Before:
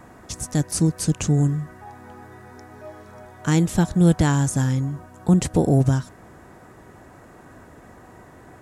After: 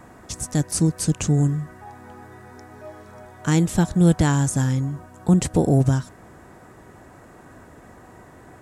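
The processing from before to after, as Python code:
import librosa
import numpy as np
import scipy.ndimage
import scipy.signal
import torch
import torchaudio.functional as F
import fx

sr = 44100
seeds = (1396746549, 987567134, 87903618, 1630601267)

y = fx.peak_eq(x, sr, hz=8100.0, db=2.5, octaves=0.26)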